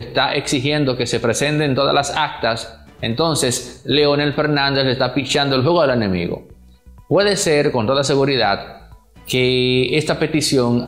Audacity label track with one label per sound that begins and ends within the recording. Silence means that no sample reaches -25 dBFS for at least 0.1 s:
3.030000	3.700000	sound
3.860000	6.370000	sound
7.110000	8.710000	sound